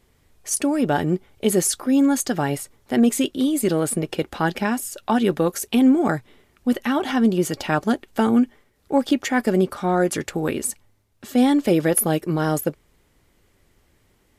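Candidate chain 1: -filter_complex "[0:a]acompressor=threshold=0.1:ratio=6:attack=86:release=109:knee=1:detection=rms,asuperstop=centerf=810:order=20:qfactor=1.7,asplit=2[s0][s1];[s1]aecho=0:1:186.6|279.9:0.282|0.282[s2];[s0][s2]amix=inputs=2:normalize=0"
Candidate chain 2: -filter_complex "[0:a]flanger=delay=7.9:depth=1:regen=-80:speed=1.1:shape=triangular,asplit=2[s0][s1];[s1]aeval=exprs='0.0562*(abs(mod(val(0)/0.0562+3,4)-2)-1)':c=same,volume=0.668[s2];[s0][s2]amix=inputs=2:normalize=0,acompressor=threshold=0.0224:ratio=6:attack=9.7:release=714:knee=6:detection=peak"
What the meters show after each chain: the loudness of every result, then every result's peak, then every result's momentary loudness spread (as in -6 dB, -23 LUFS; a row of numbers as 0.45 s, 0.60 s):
-23.0 LUFS, -36.5 LUFS; -7.0 dBFS, -21.0 dBFS; 7 LU, 5 LU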